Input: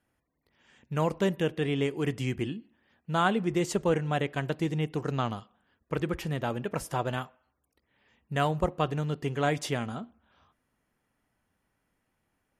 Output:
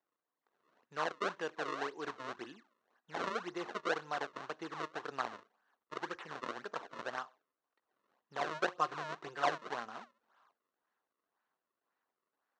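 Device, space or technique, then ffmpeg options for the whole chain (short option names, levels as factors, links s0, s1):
circuit-bent sampling toy: -filter_complex "[0:a]asettb=1/sr,asplit=3[s0][s1][s2];[s0]atrim=end=8.524[s3];[s1]atrim=start=8.52:end=9.69,asetpts=PTS-STARTPTS,afade=t=in:d=0.004:c=qsin,afade=t=out:st=1.166:d=0.004:c=qsin,aecho=1:1:5.7:0.71,atrim=end_sample=51597[s4];[s2]atrim=start=9.686[s5];[s3][s4]acrossfade=d=0.004:c1=hsin:c2=qsin[s6];[s6][s5]acrossfade=d=0.004:c1=qsin:c2=hsin,acrusher=samples=32:mix=1:aa=0.000001:lfo=1:lforange=51.2:lforate=1.9,highpass=560,equalizer=f=570:t=q:w=4:g=-3,equalizer=f=1100:t=q:w=4:g=5,equalizer=f=1600:t=q:w=4:g=3,equalizer=f=2300:t=q:w=4:g=-6,equalizer=f=3300:t=q:w=4:g=-5,equalizer=f=4900:t=q:w=4:g=-8,lowpass=f=5200:w=0.5412,lowpass=f=5200:w=1.3066,volume=0.562"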